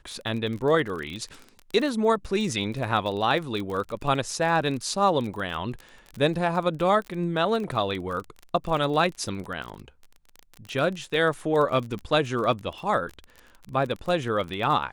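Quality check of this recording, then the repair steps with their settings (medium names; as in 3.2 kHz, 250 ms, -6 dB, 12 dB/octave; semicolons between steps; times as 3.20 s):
crackle 31 per s -31 dBFS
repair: de-click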